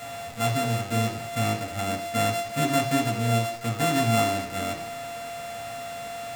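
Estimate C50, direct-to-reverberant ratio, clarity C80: 9.0 dB, -0.5 dB, 11.0 dB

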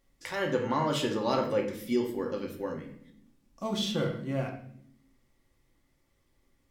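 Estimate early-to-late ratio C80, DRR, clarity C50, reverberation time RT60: 11.0 dB, 0.5 dB, 7.5 dB, 0.65 s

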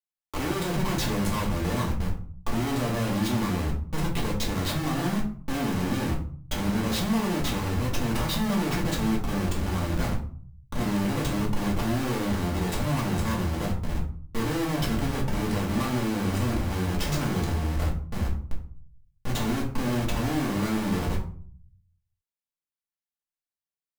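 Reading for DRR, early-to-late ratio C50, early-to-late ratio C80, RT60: -4.0 dB, 8.0 dB, 12.5 dB, 0.50 s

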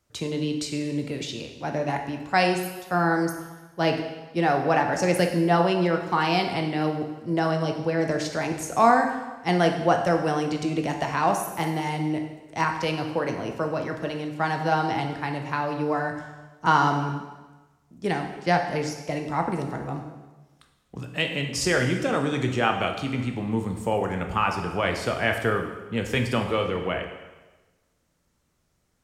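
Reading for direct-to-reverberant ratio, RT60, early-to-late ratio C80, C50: 3.5 dB, 1.2 s, 8.5 dB, 6.5 dB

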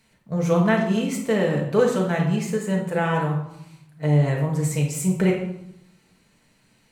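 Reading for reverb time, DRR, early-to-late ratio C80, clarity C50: 0.80 s, -1.5 dB, 8.0 dB, 5.0 dB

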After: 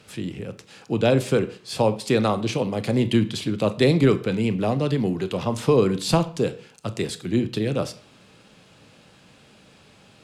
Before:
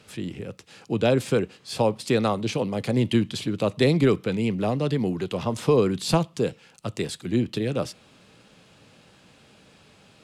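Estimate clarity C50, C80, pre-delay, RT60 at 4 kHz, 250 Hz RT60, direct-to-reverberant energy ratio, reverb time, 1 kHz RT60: 17.5 dB, 19.5 dB, 25 ms, 0.40 s, 0.45 s, 11.5 dB, 0.45 s, 0.45 s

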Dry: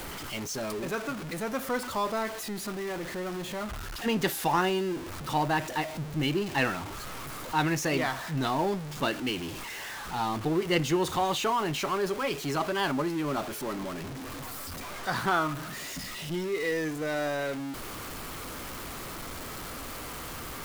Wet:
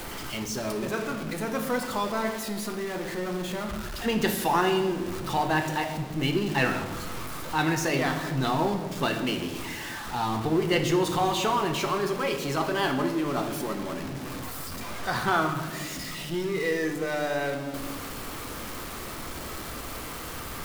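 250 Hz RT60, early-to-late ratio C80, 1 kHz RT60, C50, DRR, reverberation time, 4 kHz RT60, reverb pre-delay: 2.3 s, 10.0 dB, 1.3 s, 8.0 dB, 5.0 dB, 1.5 s, 0.95 s, 3 ms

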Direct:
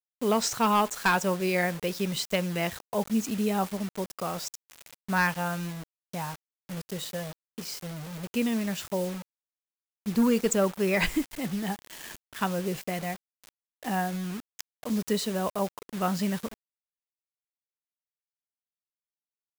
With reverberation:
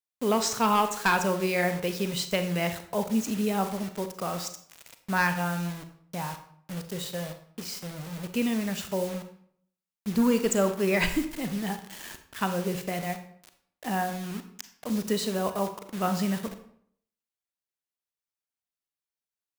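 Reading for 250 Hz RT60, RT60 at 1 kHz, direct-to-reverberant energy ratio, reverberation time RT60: 0.70 s, 0.60 s, 8.0 dB, 0.60 s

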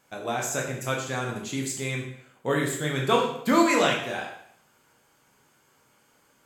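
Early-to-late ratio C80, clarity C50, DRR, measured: 7.5 dB, 5.0 dB, -1.5 dB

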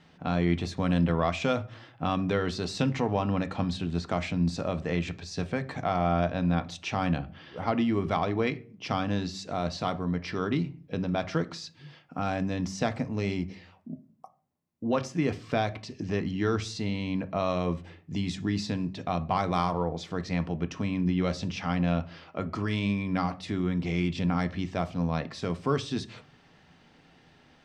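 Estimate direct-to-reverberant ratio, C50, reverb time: 8.5 dB, 18.5 dB, 0.40 s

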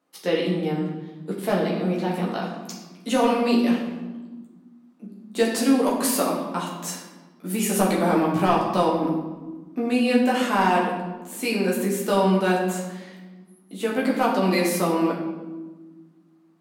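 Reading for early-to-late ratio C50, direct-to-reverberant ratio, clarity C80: 3.5 dB, -4.5 dB, 5.5 dB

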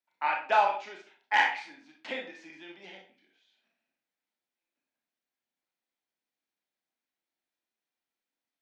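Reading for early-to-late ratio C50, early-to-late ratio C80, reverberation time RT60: 6.5 dB, 11.5 dB, 0.40 s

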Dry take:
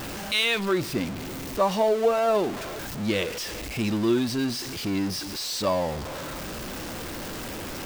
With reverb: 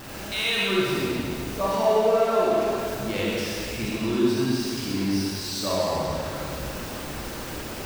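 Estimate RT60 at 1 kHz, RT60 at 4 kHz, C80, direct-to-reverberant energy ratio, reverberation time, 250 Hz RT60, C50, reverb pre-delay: 2.3 s, 2.1 s, -2.0 dB, -7.0 dB, 2.4 s, 2.5 s, -4.5 dB, 38 ms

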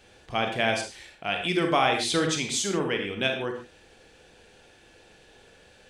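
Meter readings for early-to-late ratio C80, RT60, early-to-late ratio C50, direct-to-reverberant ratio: 9.0 dB, no single decay rate, 5.5 dB, 3.0 dB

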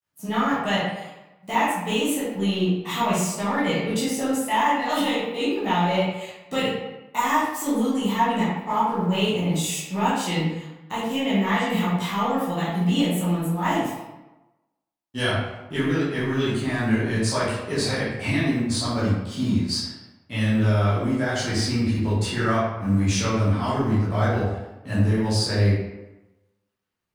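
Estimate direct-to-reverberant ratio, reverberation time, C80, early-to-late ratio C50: -11.0 dB, 1.0 s, 3.0 dB, -0.5 dB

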